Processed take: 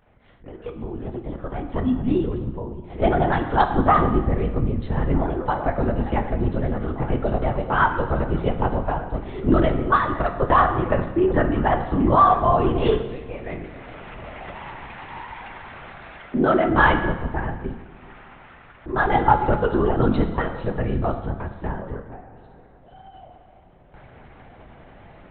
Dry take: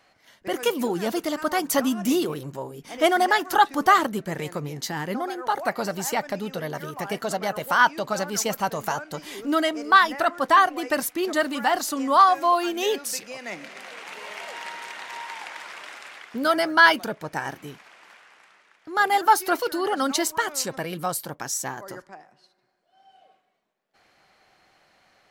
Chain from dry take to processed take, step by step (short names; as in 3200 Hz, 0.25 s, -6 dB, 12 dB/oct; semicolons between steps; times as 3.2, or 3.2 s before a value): opening faded in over 4.32 s; tilt -4.5 dB/oct; LPC vocoder at 8 kHz whisper; 9.95–10.4 compressor, threshold -18 dBFS, peak gain reduction 7 dB; 11.14–11.84 LPF 2000 Hz -> 3600 Hz 12 dB/oct; 16.29–16.7 resonant low shelf 140 Hz -14 dB, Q 1.5; plate-style reverb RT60 1.3 s, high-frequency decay 0.85×, DRR 6.5 dB; upward compressor, threshold -34 dBFS